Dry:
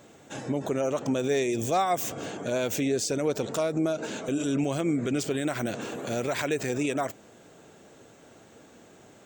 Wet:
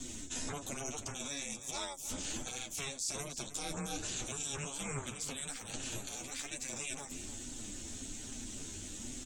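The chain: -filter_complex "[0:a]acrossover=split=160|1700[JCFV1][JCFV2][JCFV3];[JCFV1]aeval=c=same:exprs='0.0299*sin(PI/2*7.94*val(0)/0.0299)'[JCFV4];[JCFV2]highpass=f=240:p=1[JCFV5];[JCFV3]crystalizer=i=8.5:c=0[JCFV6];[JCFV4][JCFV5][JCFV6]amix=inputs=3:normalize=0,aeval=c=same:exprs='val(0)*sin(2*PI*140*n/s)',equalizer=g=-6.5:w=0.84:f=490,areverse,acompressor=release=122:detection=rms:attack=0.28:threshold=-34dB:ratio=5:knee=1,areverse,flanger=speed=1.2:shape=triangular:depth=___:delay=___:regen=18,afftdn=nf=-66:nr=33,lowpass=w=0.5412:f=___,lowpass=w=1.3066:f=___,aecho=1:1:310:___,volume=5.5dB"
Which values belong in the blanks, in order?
5.4, 7.3, 12000, 12000, 0.2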